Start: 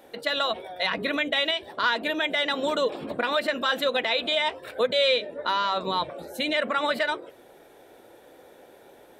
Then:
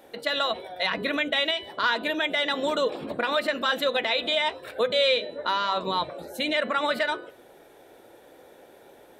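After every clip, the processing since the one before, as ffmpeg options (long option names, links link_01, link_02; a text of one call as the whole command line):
ffmpeg -i in.wav -af "bandreject=frequency=248.5:width_type=h:width=4,bandreject=frequency=497:width_type=h:width=4,bandreject=frequency=745.5:width_type=h:width=4,bandreject=frequency=994:width_type=h:width=4,bandreject=frequency=1242.5:width_type=h:width=4,bandreject=frequency=1491:width_type=h:width=4,bandreject=frequency=1739.5:width_type=h:width=4,bandreject=frequency=1988:width_type=h:width=4,bandreject=frequency=2236.5:width_type=h:width=4,bandreject=frequency=2485:width_type=h:width=4,bandreject=frequency=2733.5:width_type=h:width=4,bandreject=frequency=2982:width_type=h:width=4,bandreject=frequency=3230.5:width_type=h:width=4,bandreject=frequency=3479:width_type=h:width=4,bandreject=frequency=3727.5:width_type=h:width=4,bandreject=frequency=3976:width_type=h:width=4,bandreject=frequency=4224.5:width_type=h:width=4,bandreject=frequency=4473:width_type=h:width=4,bandreject=frequency=4721.5:width_type=h:width=4" out.wav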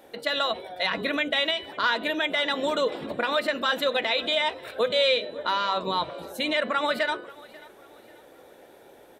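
ffmpeg -i in.wav -af "aecho=1:1:539|1078|1617:0.0794|0.031|0.0121" out.wav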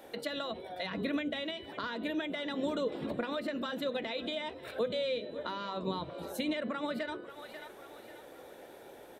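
ffmpeg -i in.wav -filter_complex "[0:a]acrossover=split=380[link_01][link_02];[link_02]acompressor=threshold=-40dB:ratio=4[link_03];[link_01][link_03]amix=inputs=2:normalize=0" out.wav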